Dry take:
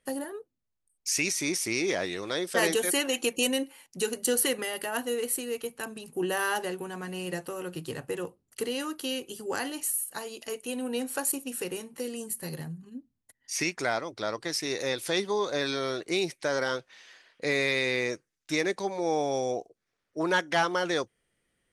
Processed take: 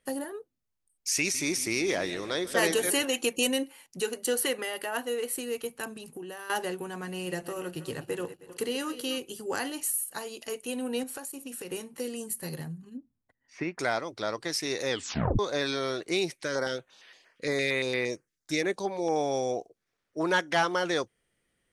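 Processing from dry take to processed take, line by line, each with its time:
1.09–3.05 frequency-shifting echo 0.155 s, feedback 58%, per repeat -33 Hz, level -16.5 dB
4–5.38 tone controls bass -8 dB, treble -4 dB
5.91–6.5 compressor 10:1, threshold -37 dBFS
7.11–9.18 regenerating reverse delay 0.158 s, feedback 49%, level -13 dB
11.03–11.72 compressor 10:1, threshold -35 dBFS
12.97–13.79 LPF 1500 Hz
14.9 tape stop 0.49 s
16.44–19.16 stepped notch 8.7 Hz 780–6900 Hz

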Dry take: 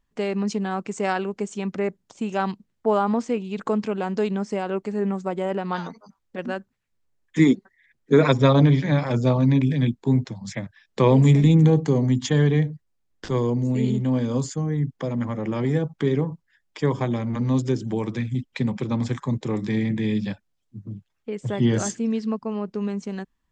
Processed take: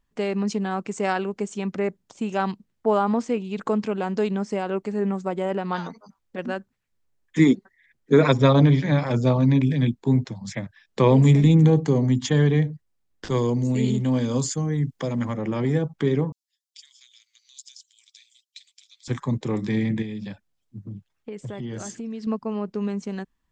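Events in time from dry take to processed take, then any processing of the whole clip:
13.3–15.34 high shelf 3100 Hz +8.5 dB
16.32–19.08 inverse Chebyshev high-pass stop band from 660 Hz, stop band 80 dB
20.02–22.27 compressor, threshold -30 dBFS

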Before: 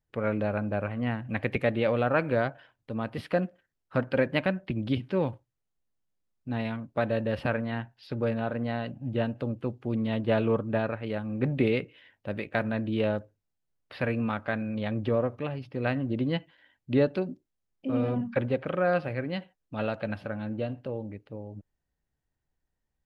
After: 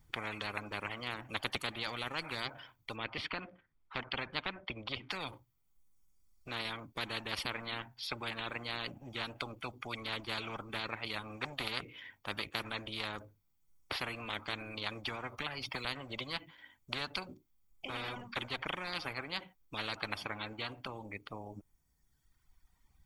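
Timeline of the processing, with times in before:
2.96–5.1 LPF 2800 Hz
15.38–15.85 three-band squash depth 100%
whole clip: reverb removal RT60 1.5 s; comb 0.9 ms, depth 49%; spectral compressor 10:1; gain -4 dB

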